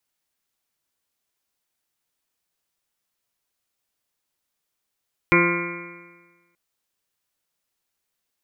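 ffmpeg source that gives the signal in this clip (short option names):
-f lavfi -i "aevalsrc='0.0891*pow(10,-3*t/1.32)*sin(2*PI*172.07*t)+0.15*pow(10,-3*t/1.32)*sin(2*PI*344.54*t)+0.0531*pow(10,-3*t/1.32)*sin(2*PI*517.83*t)+0.0112*pow(10,-3*t/1.32)*sin(2*PI*692.33*t)+0.00944*pow(10,-3*t/1.32)*sin(2*PI*868.45*t)+0.0944*pow(10,-3*t/1.32)*sin(2*PI*1046.57*t)+0.0251*pow(10,-3*t/1.32)*sin(2*PI*1227.08*t)+0.0794*pow(10,-3*t/1.32)*sin(2*PI*1410.36*t)+0.02*pow(10,-3*t/1.32)*sin(2*PI*1596.76*t)+0.02*pow(10,-3*t/1.32)*sin(2*PI*1786.65*t)+0.0708*pow(10,-3*t/1.32)*sin(2*PI*1980.36*t)+0.112*pow(10,-3*t/1.32)*sin(2*PI*2178.24*t)+0.112*pow(10,-3*t/1.32)*sin(2*PI*2380.59*t)':d=1.23:s=44100"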